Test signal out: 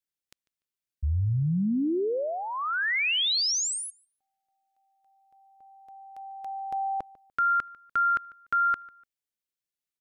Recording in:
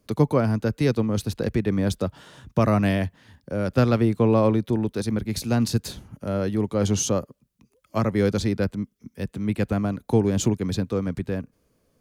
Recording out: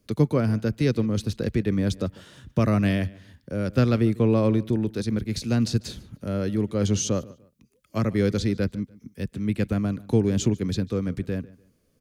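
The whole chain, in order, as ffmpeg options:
-filter_complex "[0:a]acrossover=split=7800[s0][s1];[s1]acompressor=threshold=0.00251:ratio=4:attack=1:release=60[s2];[s0][s2]amix=inputs=2:normalize=0,equalizer=f=860:t=o:w=1.1:g=-8.5,asplit=2[s3][s4];[s4]adelay=147,lowpass=f=4700:p=1,volume=0.0891,asplit=2[s5][s6];[s6]adelay=147,lowpass=f=4700:p=1,volume=0.29[s7];[s5][s7]amix=inputs=2:normalize=0[s8];[s3][s8]amix=inputs=2:normalize=0"

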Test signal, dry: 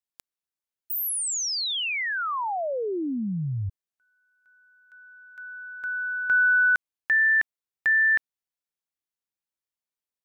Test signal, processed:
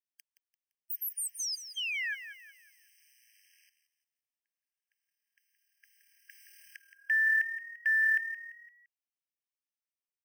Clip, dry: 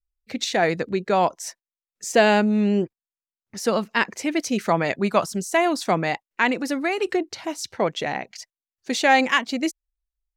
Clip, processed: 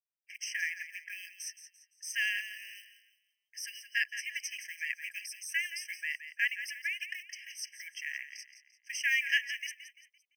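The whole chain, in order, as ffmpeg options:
-filter_complex "[0:a]asplit=5[s0][s1][s2][s3][s4];[s1]adelay=171,afreqshift=38,volume=0.266[s5];[s2]adelay=342,afreqshift=76,volume=0.101[s6];[s3]adelay=513,afreqshift=114,volume=0.0385[s7];[s4]adelay=684,afreqshift=152,volume=0.0146[s8];[s0][s5][s6][s7][s8]amix=inputs=5:normalize=0,acrusher=bits=7:mode=log:mix=0:aa=0.000001,afftfilt=real='re*eq(mod(floor(b*sr/1024/1600),2),1)':imag='im*eq(mod(floor(b*sr/1024/1600),2),1)':win_size=1024:overlap=0.75,volume=0.501"

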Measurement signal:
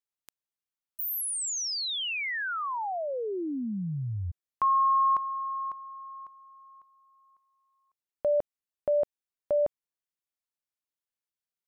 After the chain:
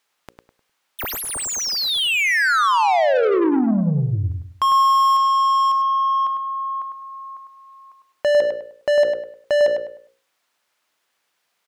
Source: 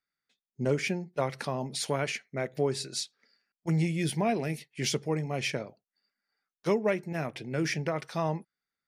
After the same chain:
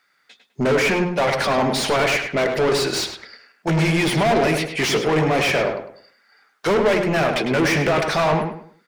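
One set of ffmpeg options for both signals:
-filter_complex "[0:a]bandreject=f=60:t=h:w=6,bandreject=f=120:t=h:w=6,bandreject=f=180:t=h:w=6,bandreject=f=240:t=h:w=6,bandreject=f=300:t=h:w=6,bandreject=f=360:t=h:w=6,bandreject=f=420:t=h:w=6,bandreject=f=480:t=h:w=6,bandreject=f=540:t=h:w=6,asplit=2[s0][s1];[s1]highpass=f=720:p=1,volume=44.7,asoftclip=type=tanh:threshold=0.224[s2];[s0][s2]amix=inputs=2:normalize=0,lowpass=f=2600:p=1,volume=0.501,asplit=2[s3][s4];[s4]adelay=102,lowpass=f=2800:p=1,volume=0.562,asplit=2[s5][s6];[s6]adelay=102,lowpass=f=2800:p=1,volume=0.31,asplit=2[s7][s8];[s8]adelay=102,lowpass=f=2800:p=1,volume=0.31,asplit=2[s9][s10];[s10]adelay=102,lowpass=f=2800:p=1,volume=0.31[s11];[s3][s5][s7][s9][s11]amix=inputs=5:normalize=0,volume=1.26"

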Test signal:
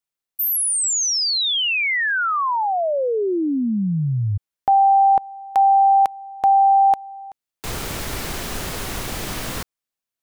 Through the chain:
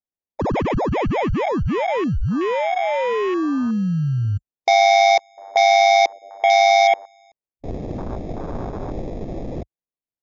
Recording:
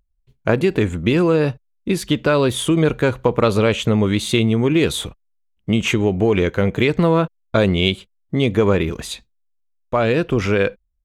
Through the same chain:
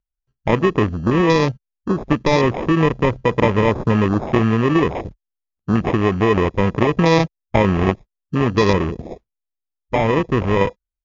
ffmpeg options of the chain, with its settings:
-af "acrusher=samples=30:mix=1:aa=0.000001,afwtdn=0.0447,volume=1.12" -ar 16000 -c:a libmp3lame -b:a 160k

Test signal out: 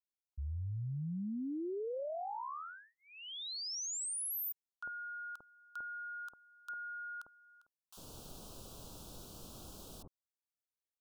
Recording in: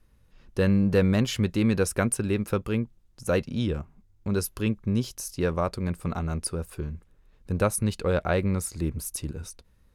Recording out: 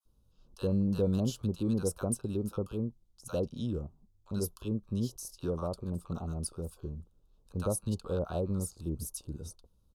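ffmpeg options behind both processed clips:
-filter_complex "[0:a]adynamicequalizer=threshold=0.00501:dfrequency=3200:dqfactor=0.83:tfrequency=3200:tqfactor=0.83:attack=5:release=100:ratio=0.375:range=2:mode=cutabove:tftype=bell,asuperstop=centerf=2000:order=4:qfactor=0.99,acrossover=split=980[s0][s1];[s0]adelay=50[s2];[s2][s1]amix=inputs=2:normalize=0,volume=0.447"

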